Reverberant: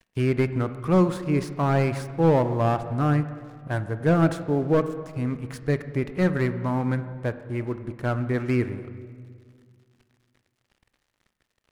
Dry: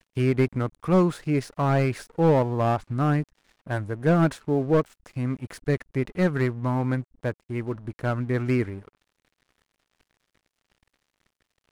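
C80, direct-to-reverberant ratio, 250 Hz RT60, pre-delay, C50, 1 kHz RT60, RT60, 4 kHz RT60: 13.0 dB, 11.0 dB, 2.5 s, 20 ms, 12.0 dB, 1.8 s, 2.0 s, 1.5 s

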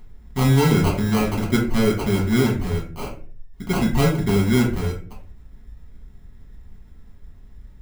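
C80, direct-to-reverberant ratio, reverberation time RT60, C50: 12.5 dB, −4.0 dB, 0.40 s, 7.0 dB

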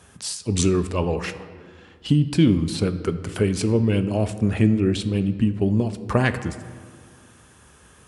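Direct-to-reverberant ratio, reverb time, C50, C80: 10.0 dB, 2.0 s, 12.5 dB, 14.0 dB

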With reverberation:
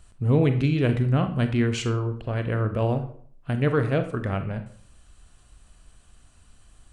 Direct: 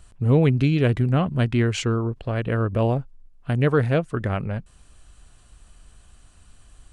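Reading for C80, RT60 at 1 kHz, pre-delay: 14.0 dB, 0.55 s, 30 ms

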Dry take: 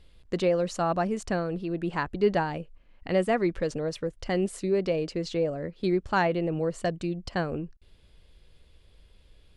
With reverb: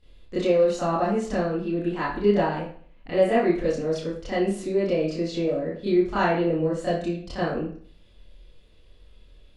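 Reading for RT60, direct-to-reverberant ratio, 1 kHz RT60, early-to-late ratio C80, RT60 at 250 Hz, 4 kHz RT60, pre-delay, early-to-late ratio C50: 0.50 s, −11.5 dB, 0.50 s, 7.0 dB, 0.55 s, 0.45 s, 25 ms, 1.5 dB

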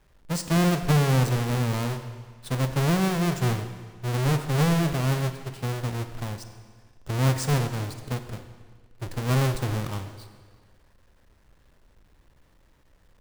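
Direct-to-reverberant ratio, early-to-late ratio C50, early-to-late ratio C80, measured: 8.5 dB, 9.5 dB, 10.5 dB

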